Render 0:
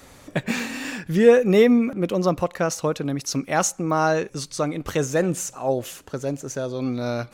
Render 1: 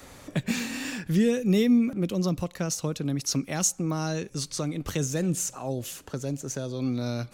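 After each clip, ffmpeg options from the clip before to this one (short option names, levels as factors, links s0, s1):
-filter_complex "[0:a]acrossover=split=280|3000[s0][s1][s2];[s1]acompressor=threshold=0.0126:ratio=3[s3];[s0][s3][s2]amix=inputs=3:normalize=0"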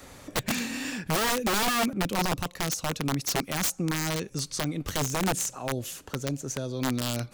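-af "aeval=exprs='(mod(10.6*val(0)+1,2)-1)/10.6':c=same"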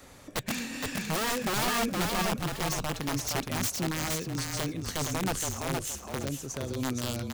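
-filter_complex "[0:a]asplit=5[s0][s1][s2][s3][s4];[s1]adelay=467,afreqshift=-32,volume=0.708[s5];[s2]adelay=934,afreqshift=-64,volume=0.226[s6];[s3]adelay=1401,afreqshift=-96,volume=0.0724[s7];[s4]adelay=1868,afreqshift=-128,volume=0.0232[s8];[s0][s5][s6][s7][s8]amix=inputs=5:normalize=0,volume=0.631"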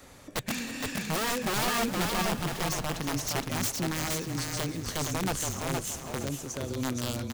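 -af "aecho=1:1:318|636|954|1272|1590:0.2|0.102|0.0519|0.0265|0.0135"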